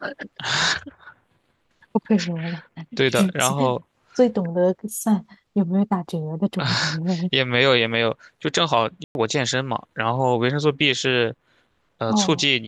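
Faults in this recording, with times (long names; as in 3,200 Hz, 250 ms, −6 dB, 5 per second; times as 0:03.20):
0:09.04–0:09.15: drop-out 111 ms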